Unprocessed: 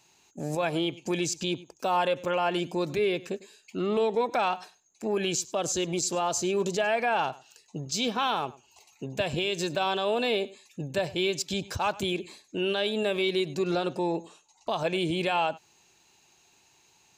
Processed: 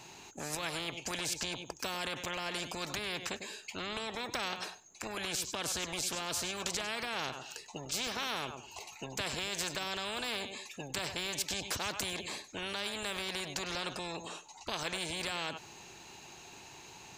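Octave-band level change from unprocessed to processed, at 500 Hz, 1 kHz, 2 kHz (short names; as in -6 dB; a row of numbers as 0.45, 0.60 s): -14.5, -11.0, -4.5 dB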